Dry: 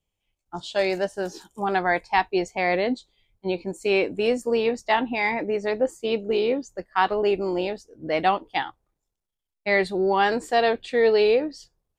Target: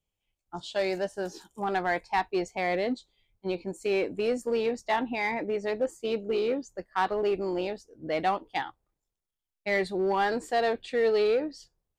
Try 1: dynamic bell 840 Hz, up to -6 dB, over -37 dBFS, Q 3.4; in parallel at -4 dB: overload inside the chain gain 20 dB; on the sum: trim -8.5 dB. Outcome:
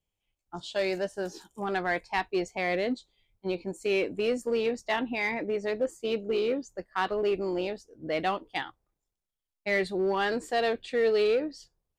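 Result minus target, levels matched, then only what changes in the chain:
1 kHz band -3.0 dB
change: dynamic bell 2.9 kHz, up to -6 dB, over -37 dBFS, Q 3.4

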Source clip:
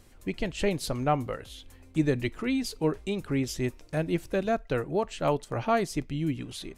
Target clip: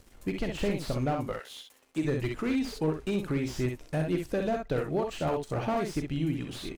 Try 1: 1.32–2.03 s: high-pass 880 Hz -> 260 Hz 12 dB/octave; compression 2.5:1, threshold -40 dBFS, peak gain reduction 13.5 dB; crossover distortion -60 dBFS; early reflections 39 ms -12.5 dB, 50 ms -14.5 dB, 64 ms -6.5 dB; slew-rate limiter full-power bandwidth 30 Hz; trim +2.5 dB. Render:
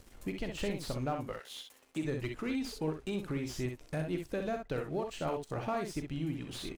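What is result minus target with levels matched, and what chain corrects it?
compression: peak gain reduction +6 dB
1.32–2.03 s: high-pass 880 Hz -> 260 Hz 12 dB/octave; compression 2.5:1, threshold -30 dBFS, peak gain reduction 7.5 dB; crossover distortion -60 dBFS; early reflections 39 ms -12.5 dB, 50 ms -14.5 dB, 64 ms -6.5 dB; slew-rate limiter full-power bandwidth 30 Hz; trim +2.5 dB

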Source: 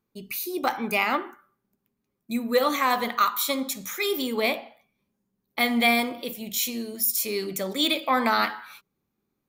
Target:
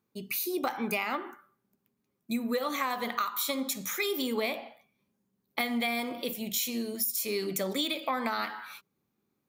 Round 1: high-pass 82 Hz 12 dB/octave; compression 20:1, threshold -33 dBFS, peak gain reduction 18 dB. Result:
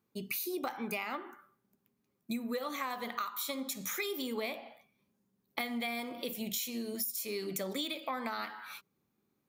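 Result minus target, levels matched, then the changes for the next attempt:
compression: peak gain reduction +6 dB
change: compression 20:1, threshold -26.5 dBFS, peak gain reduction 12 dB

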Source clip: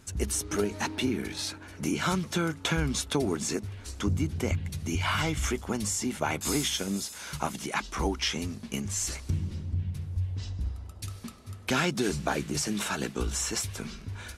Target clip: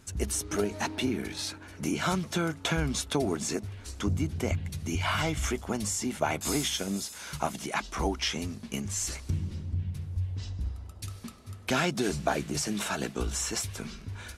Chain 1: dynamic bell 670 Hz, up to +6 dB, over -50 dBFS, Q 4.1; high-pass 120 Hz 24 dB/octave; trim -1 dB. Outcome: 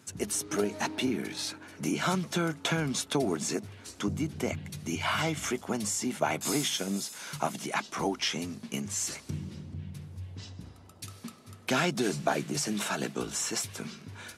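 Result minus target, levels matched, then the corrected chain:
125 Hz band -4.0 dB
dynamic bell 670 Hz, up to +6 dB, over -50 dBFS, Q 4.1; trim -1 dB

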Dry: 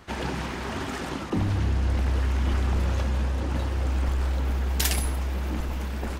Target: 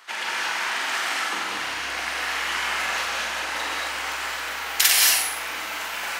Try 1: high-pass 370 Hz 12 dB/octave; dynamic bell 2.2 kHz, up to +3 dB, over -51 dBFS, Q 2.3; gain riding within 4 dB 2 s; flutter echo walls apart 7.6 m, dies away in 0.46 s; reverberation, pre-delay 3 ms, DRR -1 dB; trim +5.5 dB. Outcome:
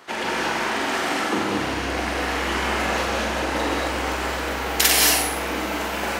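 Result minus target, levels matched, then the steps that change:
500 Hz band +11.0 dB
change: high-pass 1.2 kHz 12 dB/octave

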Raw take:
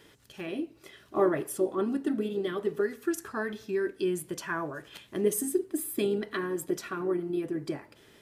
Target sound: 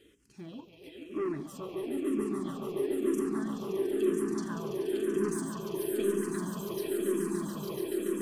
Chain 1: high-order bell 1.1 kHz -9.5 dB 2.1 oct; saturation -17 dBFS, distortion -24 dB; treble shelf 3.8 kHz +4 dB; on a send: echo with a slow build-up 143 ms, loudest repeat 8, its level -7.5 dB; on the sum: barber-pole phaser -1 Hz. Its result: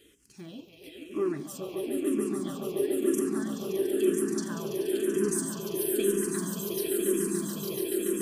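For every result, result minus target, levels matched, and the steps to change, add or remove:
saturation: distortion -12 dB; 8 kHz band +7.0 dB
change: saturation -26.5 dBFS, distortion -12 dB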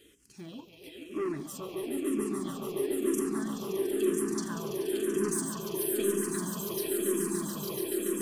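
8 kHz band +8.0 dB
change: treble shelf 3.8 kHz -6.5 dB

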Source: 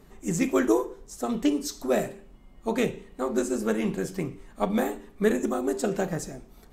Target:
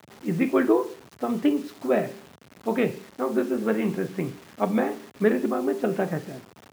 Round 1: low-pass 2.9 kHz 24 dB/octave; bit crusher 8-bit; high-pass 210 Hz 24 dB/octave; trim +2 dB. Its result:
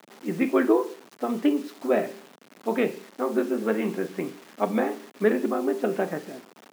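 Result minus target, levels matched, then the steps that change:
125 Hz band -6.0 dB
change: high-pass 95 Hz 24 dB/octave

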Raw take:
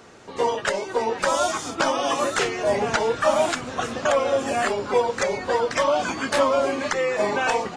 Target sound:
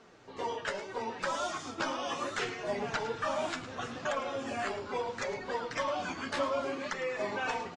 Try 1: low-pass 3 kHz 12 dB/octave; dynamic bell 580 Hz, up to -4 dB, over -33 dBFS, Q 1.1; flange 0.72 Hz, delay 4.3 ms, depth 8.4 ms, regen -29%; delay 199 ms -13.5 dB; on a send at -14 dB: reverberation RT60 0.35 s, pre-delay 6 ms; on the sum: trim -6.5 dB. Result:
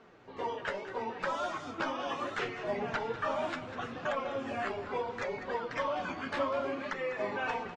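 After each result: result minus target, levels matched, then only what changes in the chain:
echo 91 ms late; 8 kHz band -10.0 dB
change: delay 108 ms -13.5 dB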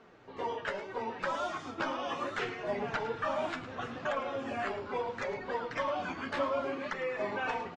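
8 kHz band -10.0 dB
change: low-pass 6 kHz 12 dB/octave

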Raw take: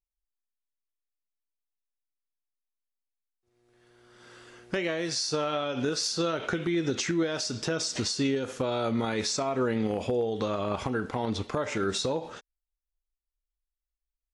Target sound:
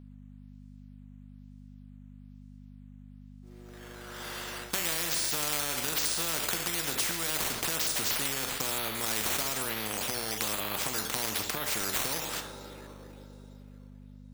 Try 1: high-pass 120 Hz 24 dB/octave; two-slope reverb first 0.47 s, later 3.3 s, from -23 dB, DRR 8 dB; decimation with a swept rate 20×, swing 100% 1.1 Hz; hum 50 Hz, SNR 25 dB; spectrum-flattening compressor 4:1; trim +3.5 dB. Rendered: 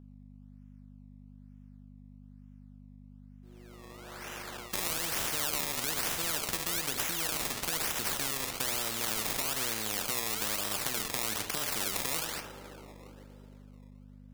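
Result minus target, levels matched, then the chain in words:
decimation with a swept rate: distortion +7 dB
high-pass 120 Hz 24 dB/octave; two-slope reverb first 0.47 s, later 3.3 s, from -23 dB, DRR 8 dB; decimation with a swept rate 6×, swing 100% 1.1 Hz; hum 50 Hz, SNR 25 dB; spectrum-flattening compressor 4:1; trim +3.5 dB

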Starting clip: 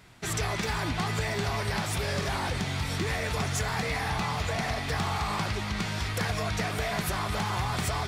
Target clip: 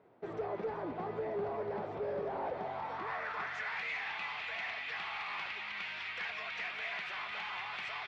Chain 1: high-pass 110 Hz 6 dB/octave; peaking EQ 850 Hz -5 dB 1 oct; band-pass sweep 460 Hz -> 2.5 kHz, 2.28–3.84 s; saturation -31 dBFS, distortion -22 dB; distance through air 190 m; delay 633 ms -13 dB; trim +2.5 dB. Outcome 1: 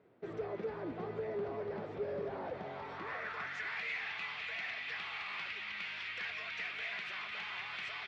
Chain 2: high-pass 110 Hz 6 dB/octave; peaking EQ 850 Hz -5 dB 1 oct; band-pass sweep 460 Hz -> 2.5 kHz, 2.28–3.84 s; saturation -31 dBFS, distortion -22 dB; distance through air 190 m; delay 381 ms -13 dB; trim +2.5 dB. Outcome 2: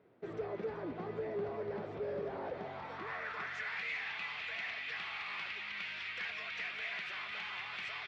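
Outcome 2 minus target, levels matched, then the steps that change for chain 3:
1 kHz band -4.0 dB
change: peaking EQ 850 Hz +3 dB 1 oct

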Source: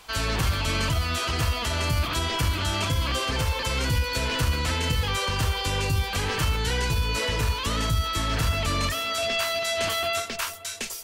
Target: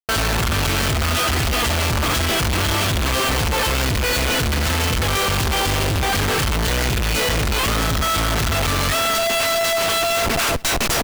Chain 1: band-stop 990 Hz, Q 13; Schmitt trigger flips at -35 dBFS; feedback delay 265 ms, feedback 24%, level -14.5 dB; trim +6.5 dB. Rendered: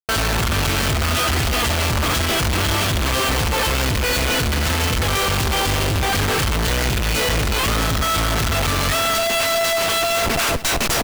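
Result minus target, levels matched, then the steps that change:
echo-to-direct +9 dB
change: feedback delay 265 ms, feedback 24%, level -23.5 dB

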